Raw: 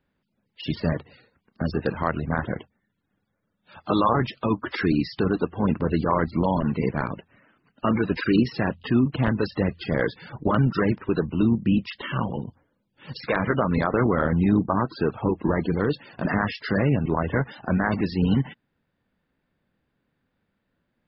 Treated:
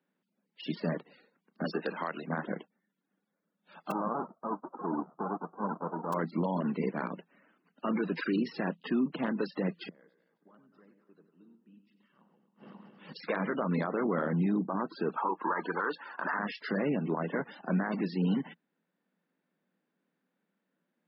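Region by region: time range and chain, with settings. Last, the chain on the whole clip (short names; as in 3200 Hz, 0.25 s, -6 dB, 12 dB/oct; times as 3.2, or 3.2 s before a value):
1.64–2.27 HPF 430 Hz 6 dB/oct + high shelf 3200 Hz +8.5 dB + three-band squash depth 70%
3.9–6.12 spectral whitening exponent 0.1 + steep low-pass 1300 Hz 72 dB/oct
9.85–13.13 regenerating reverse delay 0.133 s, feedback 64%, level -12.5 dB + echo 95 ms -10 dB + flipped gate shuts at -25 dBFS, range -33 dB
15.16–16.39 HPF 380 Hz + band shelf 1200 Hz +14.5 dB 1.2 oct
whole clip: elliptic high-pass 170 Hz, stop band 40 dB; high shelf 4100 Hz -5.5 dB; limiter -16 dBFS; gain -5 dB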